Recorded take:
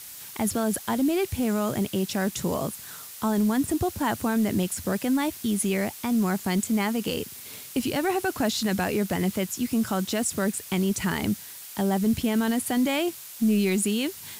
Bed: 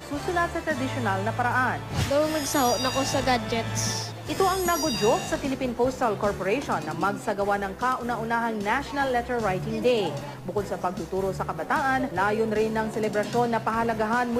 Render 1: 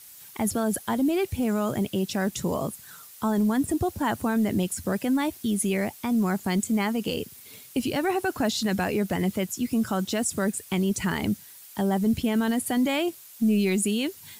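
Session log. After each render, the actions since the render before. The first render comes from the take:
broadband denoise 8 dB, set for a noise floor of −42 dBFS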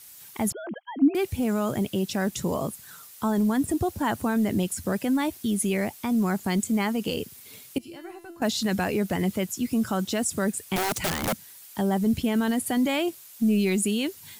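0:00.52–0:01.15: three sine waves on the formant tracks
0:07.78–0:08.42: tuned comb filter 340 Hz, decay 0.57 s, mix 90%
0:10.76–0:11.33: wrap-around overflow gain 21.5 dB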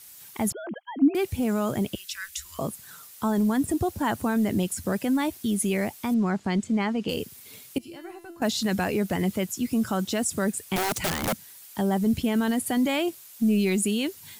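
0:01.95–0:02.59: inverse Chebyshev band-stop filter 120–810 Hz
0:06.14–0:07.09: high-frequency loss of the air 110 metres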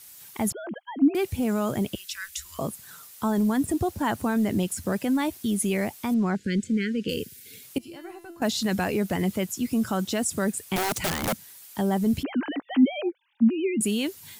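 0:03.65–0:05.26: slack as between gear wheels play −52.5 dBFS
0:06.35–0:07.63: linear-phase brick-wall band-stop 560–1,400 Hz
0:12.23–0:13.81: three sine waves on the formant tracks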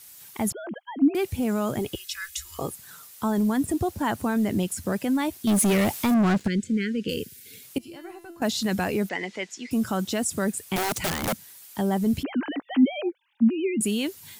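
0:01.79–0:02.73: comb filter 2.4 ms, depth 58%
0:05.47–0:06.48: leveller curve on the samples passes 3
0:09.09–0:09.71: loudspeaker in its box 440–6,300 Hz, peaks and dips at 620 Hz −4 dB, 1,200 Hz −6 dB, 2,000 Hz +8 dB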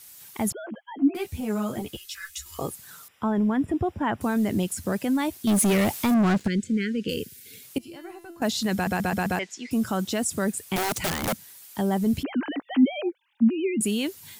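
0:00.66–0:02.46: string-ensemble chorus
0:03.08–0:04.21: Savitzky-Golay smoothing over 25 samples
0:08.74: stutter in place 0.13 s, 5 plays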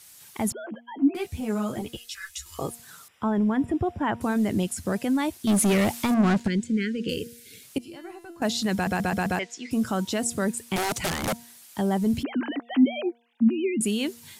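low-pass filter 12,000 Hz 12 dB per octave
hum removal 235.9 Hz, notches 4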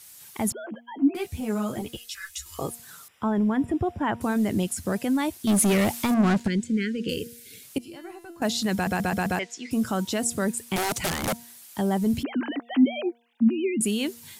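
high-shelf EQ 12,000 Hz +6 dB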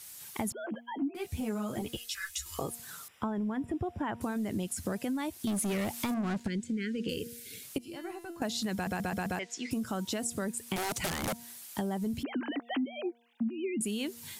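downward compressor 6 to 1, threshold −31 dBFS, peak gain reduction 16 dB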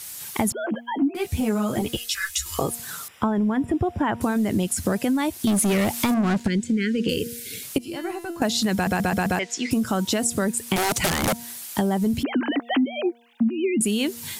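level +11 dB

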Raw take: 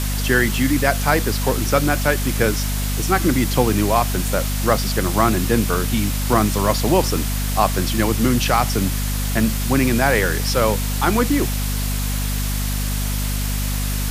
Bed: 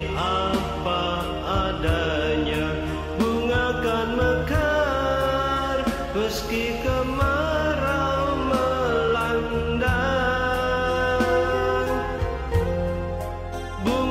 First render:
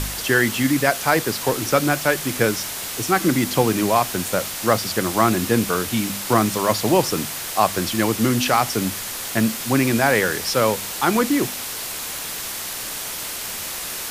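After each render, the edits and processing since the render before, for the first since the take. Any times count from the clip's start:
hum removal 50 Hz, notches 5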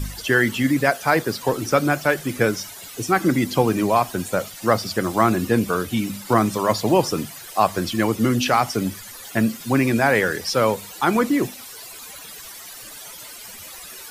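broadband denoise 15 dB, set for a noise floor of −30 dBFS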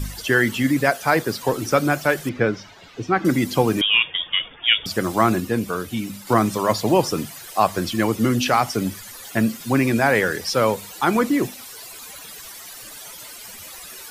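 0:02.29–0:03.25: high-frequency loss of the air 210 metres
0:03.81–0:04.86: voice inversion scrambler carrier 3,500 Hz
0:05.40–0:06.27: clip gain −3.5 dB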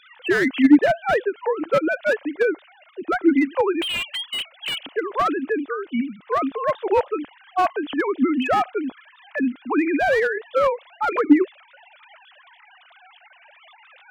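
three sine waves on the formant tracks
slew-rate limiting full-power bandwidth 170 Hz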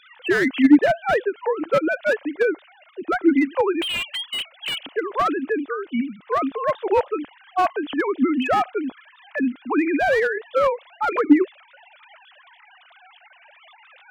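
no processing that can be heard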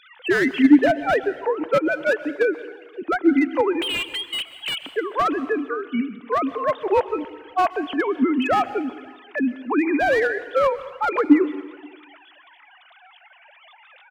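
slap from a distant wall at 91 metres, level −29 dB
dense smooth reverb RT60 1.2 s, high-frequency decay 0.85×, pre-delay 110 ms, DRR 15 dB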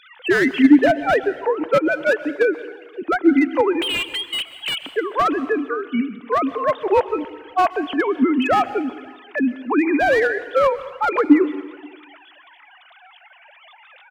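level +2.5 dB
brickwall limiter −2 dBFS, peak gain reduction 2 dB

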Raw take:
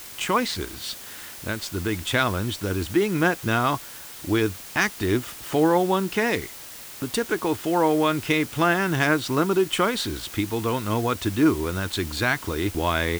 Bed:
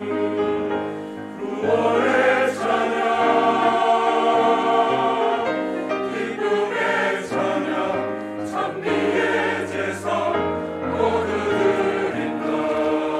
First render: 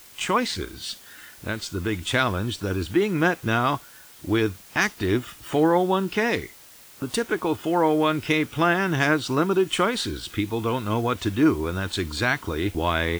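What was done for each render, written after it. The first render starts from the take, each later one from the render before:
noise reduction from a noise print 8 dB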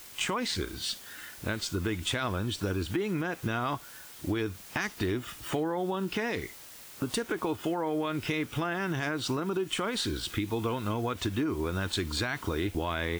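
brickwall limiter −15 dBFS, peak gain reduction 8 dB
downward compressor, threshold −27 dBFS, peak gain reduction 8.5 dB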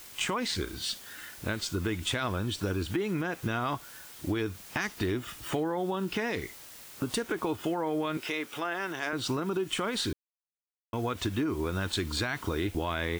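0:08.17–0:09.13: high-pass filter 370 Hz
0:10.13–0:10.93: silence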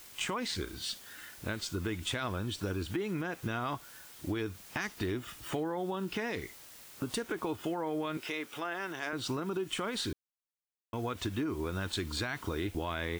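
level −4 dB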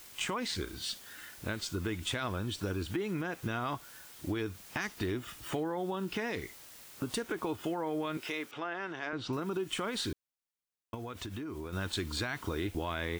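0:08.51–0:09.33: high-frequency loss of the air 140 metres
0:10.94–0:11.73: downward compressor 5 to 1, threshold −37 dBFS

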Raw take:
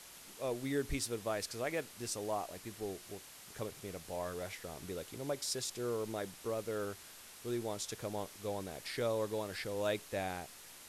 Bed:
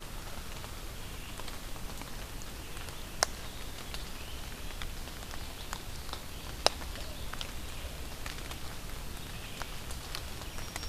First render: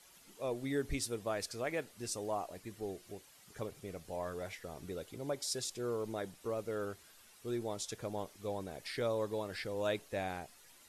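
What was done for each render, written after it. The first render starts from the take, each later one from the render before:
broadband denoise 10 dB, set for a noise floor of −54 dBFS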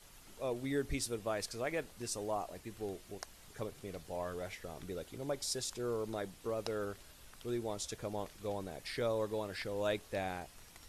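mix in bed −19 dB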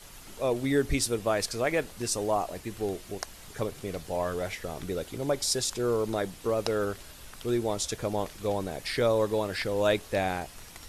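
level +10 dB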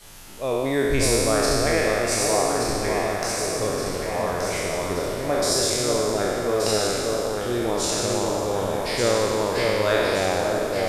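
peak hold with a decay on every bin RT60 2.49 s
delay that swaps between a low-pass and a high-pass 588 ms, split 1,300 Hz, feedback 76%, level −3 dB

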